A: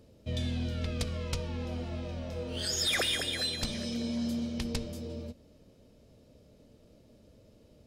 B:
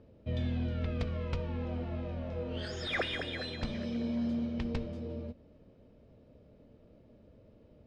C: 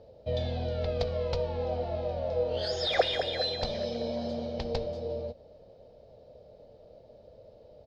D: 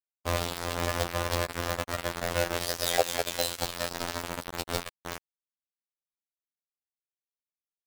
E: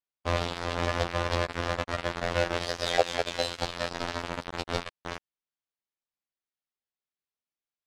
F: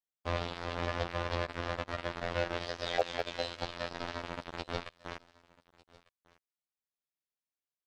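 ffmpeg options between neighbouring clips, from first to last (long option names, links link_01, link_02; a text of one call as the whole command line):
ffmpeg -i in.wav -af "lowpass=2200" out.wav
ffmpeg -i in.wav -af "firequalizer=gain_entry='entry(120,0);entry(270,-7);entry(500,12);entry(760,13);entry(1100,0);entry(2600,0);entry(4300,14);entry(8400,-1)':delay=0.05:min_phase=1" out.wav
ffmpeg -i in.wav -filter_complex "[0:a]asplit=2[link_01][link_02];[link_02]acompressor=threshold=-39dB:ratio=6,volume=2dB[link_03];[link_01][link_03]amix=inputs=2:normalize=0,acrusher=bits=3:mix=0:aa=0.000001,afftfilt=real='hypot(re,im)*cos(PI*b)':imag='0':win_size=2048:overlap=0.75,volume=1dB" out.wav
ffmpeg -i in.wav -af "lowpass=4600,volume=1.5dB" out.wav
ffmpeg -i in.wav -filter_complex "[0:a]aecho=1:1:1199:0.0631,acrossover=split=5800[link_01][link_02];[link_02]acompressor=threshold=-56dB:ratio=4:attack=1:release=60[link_03];[link_01][link_03]amix=inputs=2:normalize=0,asoftclip=type=hard:threshold=-7.5dB,volume=-6dB" out.wav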